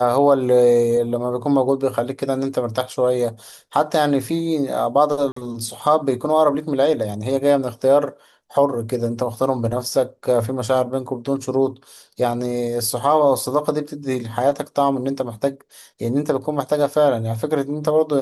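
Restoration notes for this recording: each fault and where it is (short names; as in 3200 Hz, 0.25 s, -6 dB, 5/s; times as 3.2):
5.32–5.36 gap 44 ms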